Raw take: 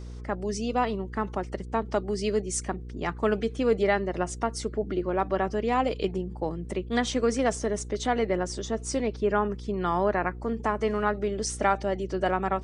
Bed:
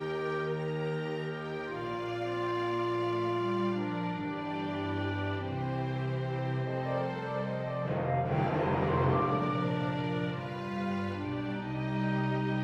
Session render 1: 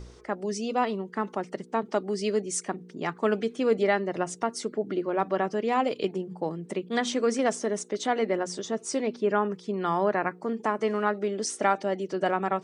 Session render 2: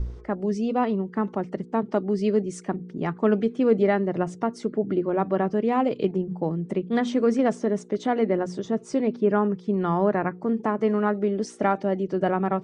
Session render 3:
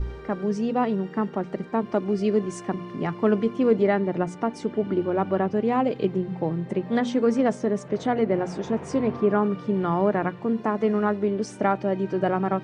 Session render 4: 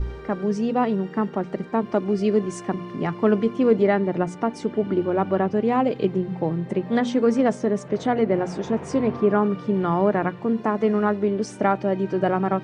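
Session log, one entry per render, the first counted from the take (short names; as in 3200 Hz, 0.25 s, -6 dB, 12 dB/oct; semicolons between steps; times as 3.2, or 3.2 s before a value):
de-hum 60 Hz, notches 5
RIAA curve playback
add bed -8.5 dB
gain +2 dB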